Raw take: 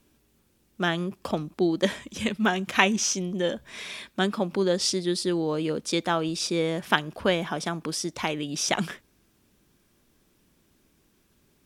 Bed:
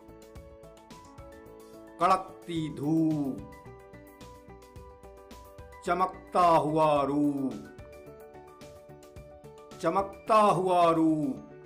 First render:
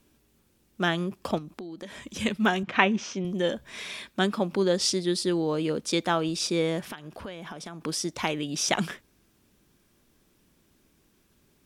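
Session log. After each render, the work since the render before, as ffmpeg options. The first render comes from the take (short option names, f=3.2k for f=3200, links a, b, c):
-filter_complex "[0:a]asettb=1/sr,asplit=3[a][b][c];[a]atrim=end=1.384[d];[b]atrim=start=1.38:end=2.02,asetpts=PTS-STARTPTS,afade=t=in:d=0.004:c=qsin,afade=t=out:st=0.636:d=0.004:c=qsin,acompressor=threshold=-36dB:ratio=10:attack=3.2:release=140:knee=1:detection=peak[e];[c]atrim=start=2.016[f];[d][e]acrossfade=d=0.004:c1=hsin:c2=qsin[g];[g][f]acrossfade=d=0.004:c1=qsin:c2=hsin,asettb=1/sr,asplit=3[h][i][j];[h]atrim=end=2.634[k];[i]atrim=start=2.63:end=3.25,asetpts=PTS-STARTPTS,afade=t=in:d=0.004:c=qsin,afade=t=out:st=0.616:d=0.004:c=qsin,highpass=100,lowpass=2.7k[l];[j]atrim=start=3.246[m];[k][l]acrossfade=d=0.004:c1=hsin:c2=qsin[n];[n][m]acrossfade=d=0.004:c1=qsin:c2=hsin,asettb=1/sr,asplit=3[o][p][q];[o]atrim=end=6.824[r];[p]atrim=start=6.82:end=7.81,asetpts=PTS-STARTPTS,afade=t=in:d=0.004:c=qsin,afade=t=out:st=0.986:d=0.004:c=qsin,acompressor=threshold=-36dB:ratio=6:attack=3.2:release=140:knee=1:detection=peak[s];[q]atrim=start=7.806[t];[r][s]acrossfade=d=0.004:c1=hsin:c2=qsin[u];[u][t]acrossfade=d=0.004:c1=qsin:c2=hsin"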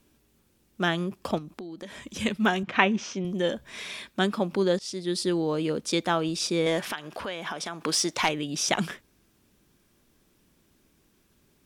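-filter_complex "[0:a]asettb=1/sr,asplit=3[a][b][c];[a]atrim=end=6.664[d];[b]atrim=start=6.66:end=8.29,asetpts=PTS-STARTPTS,afade=t=in:d=0.004:c=qsin,afade=t=out:st=1.626:d=0.004:c=qsin,asplit=2[e][f];[f]highpass=f=720:p=1,volume=14dB,asoftclip=type=tanh:threshold=-10.5dB[g];[e][g]amix=inputs=2:normalize=0,lowpass=f=7.1k:p=1,volume=-6dB[h];[c]atrim=start=8.286[i];[d][h]acrossfade=d=0.004:c1=hsin:c2=qsin[j];[j][i]acrossfade=d=0.004:c1=qsin:c2=hsin,asplit=2[k][l];[k]atrim=end=4.79,asetpts=PTS-STARTPTS,afade=t=out:st=4.786:d=0.004:c=hsin:silence=0.0944061[m];[l]atrim=start=4.79,asetpts=PTS-STARTPTS,afade=t=in:d=0.42:silence=0.0944061[n];[m][n]concat=n=2:v=0:a=1"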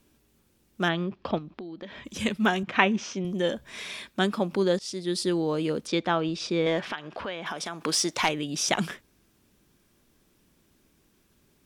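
-filter_complex "[0:a]asplit=3[a][b][c];[a]afade=t=out:st=0.88:d=0.02[d];[b]lowpass=f=4.2k:w=0.5412,lowpass=f=4.2k:w=1.3066,afade=t=in:st=0.88:d=0.02,afade=t=out:st=2.04:d=0.02[e];[c]afade=t=in:st=2.04:d=0.02[f];[d][e][f]amix=inputs=3:normalize=0,asettb=1/sr,asplit=3[g][h][i];[g]atrim=end=5.874[j];[h]atrim=start=5.87:end=7.46,asetpts=PTS-STARTPTS,afade=t=in:d=0.004:c=qsin,afade=t=out:st=1.586:d=0.004:c=qsin,lowpass=4k[k];[i]atrim=start=7.456[l];[j][k]acrossfade=d=0.004:c1=hsin:c2=qsin[m];[m][l]acrossfade=d=0.004:c1=qsin:c2=hsin"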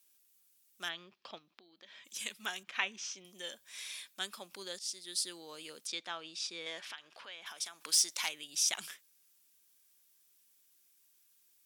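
-af "aderivative"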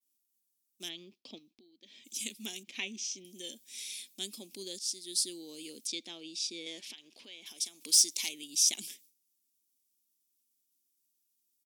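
-af "agate=range=-33dB:threshold=-58dB:ratio=3:detection=peak,firequalizer=gain_entry='entry(160,0);entry(240,13);entry(580,-7);entry(1400,-23);entry(2200,-3);entry(3500,1);entry(5600,5)':delay=0.05:min_phase=1"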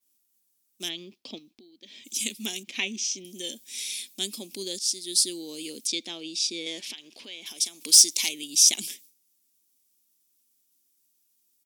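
-af "volume=8.5dB"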